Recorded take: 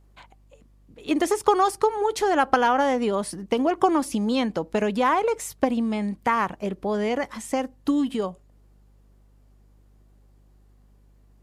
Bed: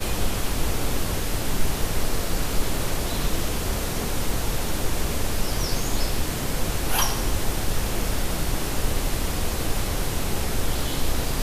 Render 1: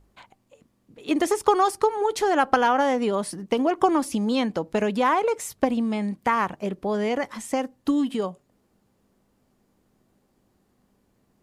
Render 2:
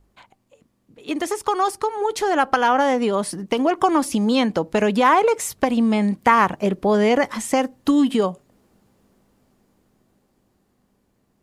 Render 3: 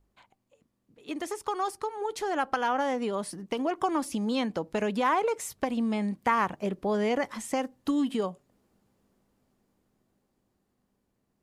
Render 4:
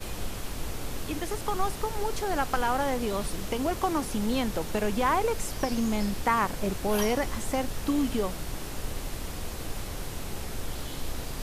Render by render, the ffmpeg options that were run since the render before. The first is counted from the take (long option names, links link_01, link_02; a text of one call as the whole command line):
ffmpeg -i in.wav -af "bandreject=frequency=50:width_type=h:width=4,bandreject=frequency=100:width_type=h:width=4,bandreject=frequency=150:width_type=h:width=4" out.wav
ffmpeg -i in.wav -filter_complex "[0:a]acrossover=split=790[link_01][link_02];[link_01]alimiter=limit=-18dB:level=0:latency=1:release=201[link_03];[link_03][link_02]amix=inputs=2:normalize=0,dynaudnorm=framelen=400:gausssize=13:maxgain=11.5dB" out.wav
ffmpeg -i in.wav -af "volume=-10dB" out.wav
ffmpeg -i in.wav -i bed.wav -filter_complex "[1:a]volume=-10dB[link_01];[0:a][link_01]amix=inputs=2:normalize=0" out.wav